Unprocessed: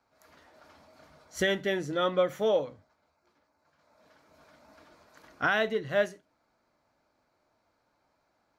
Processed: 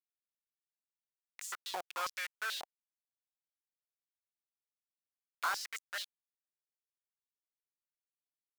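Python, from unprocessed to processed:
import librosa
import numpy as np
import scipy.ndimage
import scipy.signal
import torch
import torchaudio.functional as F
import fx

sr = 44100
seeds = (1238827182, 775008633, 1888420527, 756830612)

y = fx.schmitt(x, sr, flips_db=-27.5)
y = fx.filter_held_highpass(y, sr, hz=9.2, low_hz=750.0, high_hz=7100.0)
y = F.gain(torch.from_numpy(y), -2.0).numpy()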